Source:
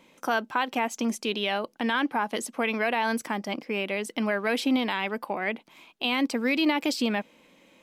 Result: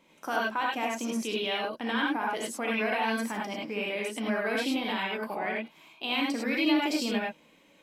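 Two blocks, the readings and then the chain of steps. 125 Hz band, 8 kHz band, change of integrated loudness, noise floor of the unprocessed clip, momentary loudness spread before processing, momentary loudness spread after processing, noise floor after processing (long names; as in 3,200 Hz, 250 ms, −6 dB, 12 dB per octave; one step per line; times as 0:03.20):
can't be measured, −2.5 dB, −2.5 dB, −62 dBFS, 6 LU, 6 LU, −60 dBFS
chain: reverb whose tail is shaped and stops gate 120 ms rising, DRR −3 dB
level −7 dB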